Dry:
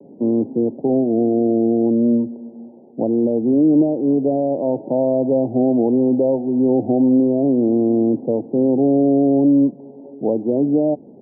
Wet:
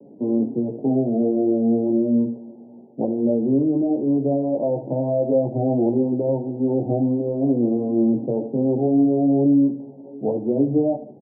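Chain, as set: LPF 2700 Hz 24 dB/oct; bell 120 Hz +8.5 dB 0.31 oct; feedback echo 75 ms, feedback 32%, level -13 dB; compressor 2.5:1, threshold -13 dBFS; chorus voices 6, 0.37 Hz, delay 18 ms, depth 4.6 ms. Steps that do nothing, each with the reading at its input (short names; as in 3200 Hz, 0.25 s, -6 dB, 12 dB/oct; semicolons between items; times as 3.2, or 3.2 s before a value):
LPF 2700 Hz: input band ends at 810 Hz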